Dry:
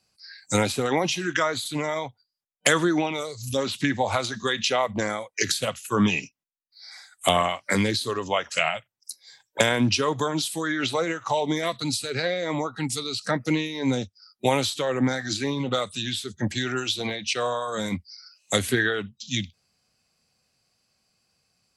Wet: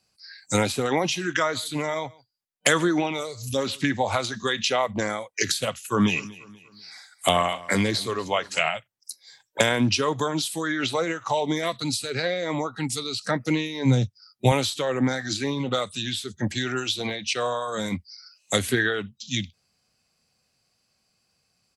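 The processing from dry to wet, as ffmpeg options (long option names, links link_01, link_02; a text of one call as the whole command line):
ffmpeg -i in.wav -filter_complex "[0:a]asplit=3[link_01][link_02][link_03];[link_01]afade=type=out:start_time=1.43:duration=0.02[link_04];[link_02]aecho=1:1:141:0.0668,afade=type=in:start_time=1.43:duration=0.02,afade=type=out:start_time=3.91:duration=0.02[link_05];[link_03]afade=type=in:start_time=3.91:duration=0.02[link_06];[link_04][link_05][link_06]amix=inputs=3:normalize=0,asettb=1/sr,asplit=3[link_07][link_08][link_09];[link_07]atrim=end=5.704[link_10];[link_08]atrim=start=5.7:end=8.68,asetpts=PTS-STARTPTS,afade=type=in:duration=0.004:curve=qsin,afade=type=out:start_time=2.976:duration=0.004:curve=qsin,aecho=1:1:243|486|729:0.1|0.043|0.0185,atrim=end_sample=131418[link_11];[link_09]atrim=start=8.676[link_12];[link_10][link_11]acrossfade=duration=0.004:curve1=hsin:curve2=qsin[link_13];[link_13][link_12]acrossfade=duration=0.004:curve1=qsin:curve2=hsin,asettb=1/sr,asplit=3[link_14][link_15][link_16];[link_14]atrim=end=13.854[link_17];[link_15]atrim=start=13.85:end=14.52,asetpts=PTS-STARTPTS,afade=type=in:duration=0.004:curve=qsin,afade=type=out:start_time=0.666:duration=0.004:curve=qsin,equalizer=frequency=120:width_type=o:width=0.81:gain=12.5[link_18];[link_16]atrim=start=14.516[link_19];[link_17][link_18]acrossfade=duration=0.004:curve1=hsin:curve2=qsin[link_20];[link_20][link_19]acrossfade=duration=0.004:curve1=qsin:curve2=hsin" out.wav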